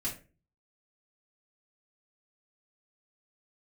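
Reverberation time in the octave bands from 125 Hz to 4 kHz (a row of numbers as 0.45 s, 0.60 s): 0.65 s, 0.50 s, 0.40 s, 0.30 s, 0.30 s, 0.25 s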